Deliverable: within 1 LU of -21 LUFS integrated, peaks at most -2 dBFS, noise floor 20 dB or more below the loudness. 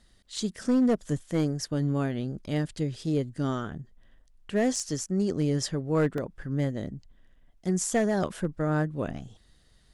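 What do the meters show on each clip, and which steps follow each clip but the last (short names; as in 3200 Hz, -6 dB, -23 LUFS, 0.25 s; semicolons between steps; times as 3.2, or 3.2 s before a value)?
clipped 0.6%; flat tops at -18.0 dBFS; dropouts 1; longest dropout 1.7 ms; loudness -29.0 LUFS; peak -18.0 dBFS; loudness target -21.0 LUFS
-> clip repair -18 dBFS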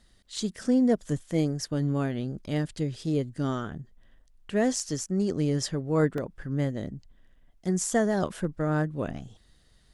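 clipped 0.0%; dropouts 1; longest dropout 1.7 ms
-> interpolate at 6.18, 1.7 ms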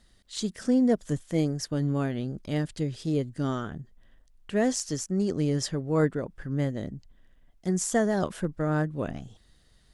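dropouts 0; loudness -28.5 LUFS; peak -12.0 dBFS; loudness target -21.0 LUFS
-> gain +7.5 dB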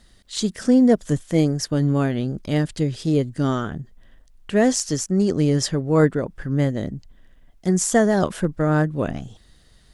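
loudness -21.0 LUFS; peak -4.5 dBFS; noise floor -54 dBFS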